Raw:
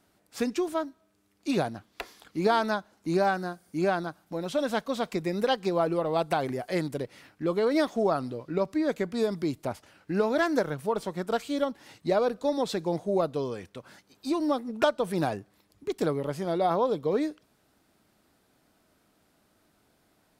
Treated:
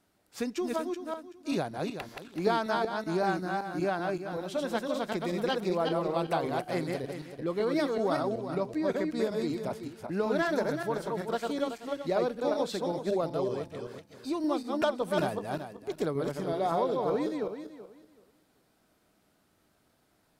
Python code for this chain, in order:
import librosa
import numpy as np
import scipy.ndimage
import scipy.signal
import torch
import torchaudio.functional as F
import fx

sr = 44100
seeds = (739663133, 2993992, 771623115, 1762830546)

y = fx.reverse_delay_fb(x, sr, ms=190, feedback_pct=44, wet_db=-2.5)
y = y * 10.0 ** (-4.5 / 20.0)